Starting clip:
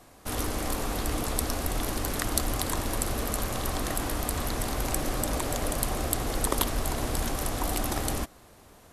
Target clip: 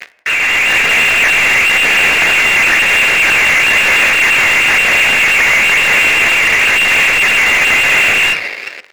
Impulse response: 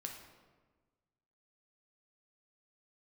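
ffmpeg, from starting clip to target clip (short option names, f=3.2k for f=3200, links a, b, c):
-filter_complex "[0:a]aecho=1:1:12|71:0.211|0.158,lowpass=f=2.4k:t=q:w=0.5098,lowpass=f=2.4k:t=q:w=0.6013,lowpass=f=2.4k:t=q:w=0.9,lowpass=f=2.4k:t=q:w=2.563,afreqshift=-2800,areverse,acompressor=threshold=-36dB:ratio=16,areverse,aphaser=in_gain=1:out_gain=1:delay=1:decay=0.4:speed=1:type=sinusoidal,acrusher=bits=8:dc=4:mix=0:aa=0.000001,dynaudnorm=f=220:g=7:m=13.5dB,aeval=exprs='sgn(val(0))*max(abs(val(0))-0.00398,0)':c=same,equalizer=f=125:t=o:w=1:g=-12,equalizer=f=250:t=o:w=1:g=-4,equalizer=f=500:t=o:w=1:g=4,equalizer=f=1k:t=o:w=1:g=-7,equalizer=f=2k:t=o:w=1:g=10,asplit=2[a][b];[b]highpass=f=720:p=1,volume=36dB,asoftclip=type=tanh:threshold=-4.5dB[c];[a][c]amix=inputs=2:normalize=0,lowpass=f=2k:p=1,volume=-6dB,bandreject=f=60:t=h:w=6,bandreject=f=120:t=h:w=6,asplit=2[d][e];[e]equalizer=f=550:t=o:w=2:g=10.5[f];[1:a]atrim=start_sample=2205,afade=t=out:st=0.25:d=0.01,atrim=end_sample=11466[g];[f][g]afir=irnorm=-1:irlink=0,volume=-9dB[h];[d][h]amix=inputs=2:normalize=0,volume=2dB"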